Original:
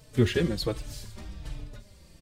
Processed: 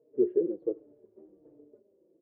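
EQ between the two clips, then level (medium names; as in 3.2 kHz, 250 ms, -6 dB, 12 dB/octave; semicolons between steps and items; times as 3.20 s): Butterworth band-pass 400 Hz, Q 2.4; distance through air 320 m; +3.0 dB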